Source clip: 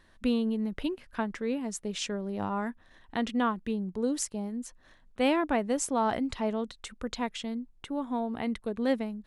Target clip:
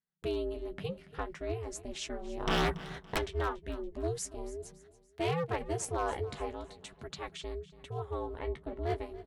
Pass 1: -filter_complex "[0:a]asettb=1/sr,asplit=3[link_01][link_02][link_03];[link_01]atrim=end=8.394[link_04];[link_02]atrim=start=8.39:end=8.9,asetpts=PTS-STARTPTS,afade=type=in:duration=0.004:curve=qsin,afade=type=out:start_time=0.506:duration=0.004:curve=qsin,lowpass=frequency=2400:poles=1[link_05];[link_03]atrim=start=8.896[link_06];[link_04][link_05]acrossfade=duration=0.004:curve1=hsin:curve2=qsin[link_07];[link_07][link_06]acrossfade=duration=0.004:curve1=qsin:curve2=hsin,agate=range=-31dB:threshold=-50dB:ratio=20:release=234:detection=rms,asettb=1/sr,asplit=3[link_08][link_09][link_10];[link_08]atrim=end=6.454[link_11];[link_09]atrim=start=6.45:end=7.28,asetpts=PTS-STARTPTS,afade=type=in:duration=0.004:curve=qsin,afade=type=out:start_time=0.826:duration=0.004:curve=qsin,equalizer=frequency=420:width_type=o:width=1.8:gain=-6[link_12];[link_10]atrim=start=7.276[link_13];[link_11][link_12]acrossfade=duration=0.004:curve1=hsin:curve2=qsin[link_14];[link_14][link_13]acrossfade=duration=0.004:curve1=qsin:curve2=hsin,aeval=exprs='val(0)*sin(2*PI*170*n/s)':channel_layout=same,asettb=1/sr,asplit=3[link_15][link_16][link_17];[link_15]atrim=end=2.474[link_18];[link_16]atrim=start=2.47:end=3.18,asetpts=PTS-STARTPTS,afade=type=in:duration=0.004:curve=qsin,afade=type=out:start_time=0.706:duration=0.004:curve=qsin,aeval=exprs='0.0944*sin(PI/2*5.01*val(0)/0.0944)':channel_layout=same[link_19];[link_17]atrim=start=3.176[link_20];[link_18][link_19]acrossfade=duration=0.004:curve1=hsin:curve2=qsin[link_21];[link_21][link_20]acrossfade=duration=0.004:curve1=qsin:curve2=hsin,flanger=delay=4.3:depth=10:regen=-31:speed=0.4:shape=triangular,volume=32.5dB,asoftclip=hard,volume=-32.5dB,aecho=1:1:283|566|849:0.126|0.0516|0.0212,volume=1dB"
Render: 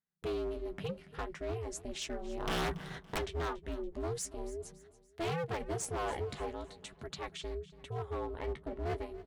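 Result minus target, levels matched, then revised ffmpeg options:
gain into a clipping stage and back: distortion +11 dB
-filter_complex "[0:a]asettb=1/sr,asplit=3[link_01][link_02][link_03];[link_01]atrim=end=8.394[link_04];[link_02]atrim=start=8.39:end=8.9,asetpts=PTS-STARTPTS,afade=type=in:duration=0.004:curve=qsin,afade=type=out:start_time=0.506:duration=0.004:curve=qsin,lowpass=frequency=2400:poles=1[link_05];[link_03]atrim=start=8.896[link_06];[link_04][link_05]acrossfade=duration=0.004:curve1=hsin:curve2=qsin[link_07];[link_07][link_06]acrossfade=duration=0.004:curve1=qsin:curve2=hsin,agate=range=-31dB:threshold=-50dB:ratio=20:release=234:detection=rms,asettb=1/sr,asplit=3[link_08][link_09][link_10];[link_08]atrim=end=6.454[link_11];[link_09]atrim=start=6.45:end=7.28,asetpts=PTS-STARTPTS,afade=type=in:duration=0.004:curve=qsin,afade=type=out:start_time=0.826:duration=0.004:curve=qsin,equalizer=frequency=420:width_type=o:width=1.8:gain=-6[link_12];[link_10]atrim=start=7.276[link_13];[link_11][link_12]acrossfade=duration=0.004:curve1=hsin:curve2=qsin[link_14];[link_14][link_13]acrossfade=duration=0.004:curve1=qsin:curve2=hsin,aeval=exprs='val(0)*sin(2*PI*170*n/s)':channel_layout=same,asettb=1/sr,asplit=3[link_15][link_16][link_17];[link_15]atrim=end=2.474[link_18];[link_16]atrim=start=2.47:end=3.18,asetpts=PTS-STARTPTS,afade=type=in:duration=0.004:curve=qsin,afade=type=out:start_time=0.706:duration=0.004:curve=qsin,aeval=exprs='0.0944*sin(PI/2*5.01*val(0)/0.0944)':channel_layout=same[link_19];[link_17]atrim=start=3.176[link_20];[link_18][link_19]acrossfade=duration=0.004:curve1=hsin:curve2=qsin[link_21];[link_21][link_20]acrossfade=duration=0.004:curve1=qsin:curve2=hsin,flanger=delay=4.3:depth=10:regen=-31:speed=0.4:shape=triangular,volume=25.5dB,asoftclip=hard,volume=-25.5dB,aecho=1:1:283|566|849:0.126|0.0516|0.0212,volume=1dB"

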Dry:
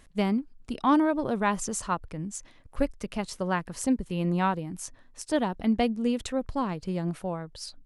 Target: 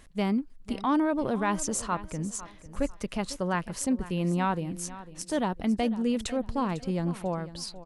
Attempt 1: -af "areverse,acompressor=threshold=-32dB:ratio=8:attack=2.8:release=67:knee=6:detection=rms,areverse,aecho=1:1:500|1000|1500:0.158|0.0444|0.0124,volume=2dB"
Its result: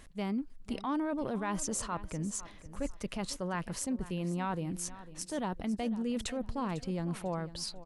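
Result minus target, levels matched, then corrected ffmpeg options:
downward compressor: peak gain reduction +8.5 dB
-af "areverse,acompressor=threshold=-22.5dB:ratio=8:attack=2.8:release=67:knee=6:detection=rms,areverse,aecho=1:1:500|1000|1500:0.158|0.0444|0.0124,volume=2dB"

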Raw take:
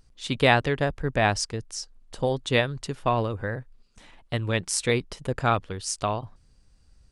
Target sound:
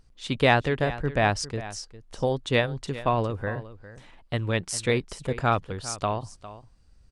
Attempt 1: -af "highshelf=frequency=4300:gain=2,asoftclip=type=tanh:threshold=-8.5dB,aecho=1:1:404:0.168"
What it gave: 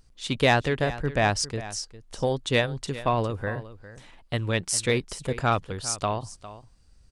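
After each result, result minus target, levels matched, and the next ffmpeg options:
soft clipping: distortion +16 dB; 8,000 Hz band +5.0 dB
-af "highshelf=frequency=4300:gain=2,asoftclip=type=tanh:threshold=0dB,aecho=1:1:404:0.168"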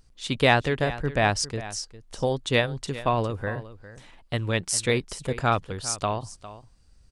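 8,000 Hz band +4.5 dB
-af "highshelf=frequency=4300:gain=-5,asoftclip=type=tanh:threshold=0dB,aecho=1:1:404:0.168"

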